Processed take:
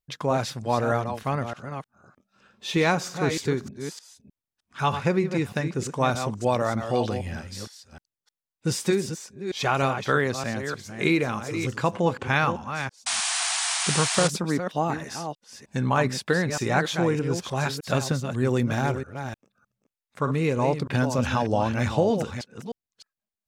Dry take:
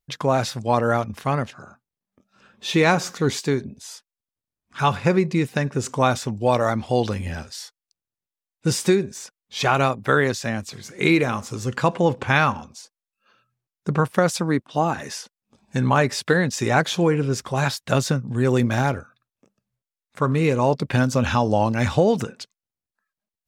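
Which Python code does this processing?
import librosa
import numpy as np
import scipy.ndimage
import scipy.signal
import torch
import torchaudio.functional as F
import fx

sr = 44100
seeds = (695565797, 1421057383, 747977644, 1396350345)

y = fx.reverse_delay(x, sr, ms=307, wet_db=-8)
y = fx.spec_paint(y, sr, seeds[0], shape='noise', start_s=13.06, length_s=1.22, low_hz=650.0, high_hz=9900.0, level_db=-22.0)
y = y * 10.0 ** (-4.5 / 20.0)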